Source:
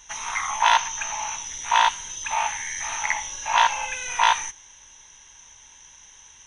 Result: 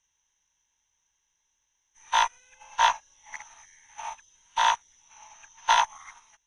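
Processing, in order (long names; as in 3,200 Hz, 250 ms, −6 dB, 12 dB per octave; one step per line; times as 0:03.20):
played backwards from end to start
dynamic equaliser 2,400 Hz, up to −5 dB, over −36 dBFS, Q 2.4
expander for the loud parts 2.5 to 1, over −33 dBFS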